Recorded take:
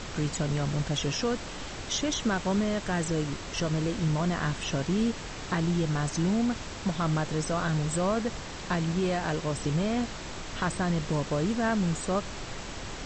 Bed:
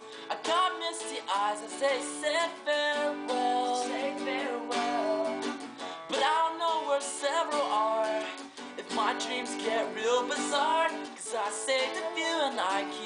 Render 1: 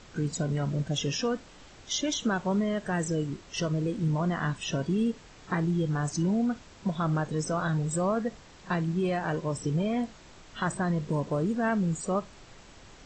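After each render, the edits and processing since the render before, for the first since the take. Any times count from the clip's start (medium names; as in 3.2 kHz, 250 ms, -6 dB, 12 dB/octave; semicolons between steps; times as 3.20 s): noise print and reduce 13 dB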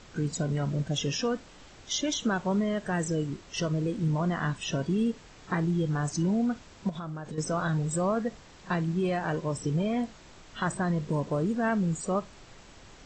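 6.89–7.38 s: compression 12:1, threshold -33 dBFS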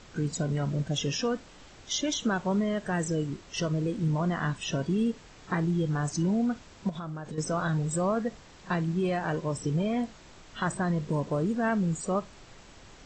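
no audible change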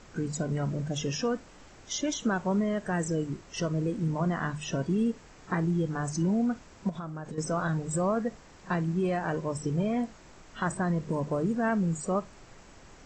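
peaking EQ 3.6 kHz -6.5 dB 0.89 oct; hum notches 50/100/150 Hz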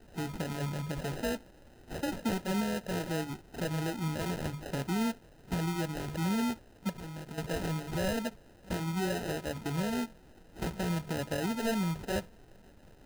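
sample-and-hold 39×; flange 1.1 Hz, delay 0.4 ms, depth 3.8 ms, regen -71%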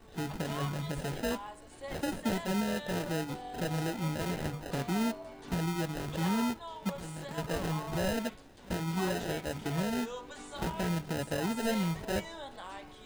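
add bed -15.5 dB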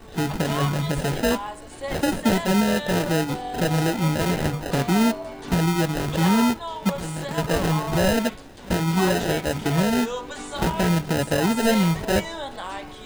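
trim +11.5 dB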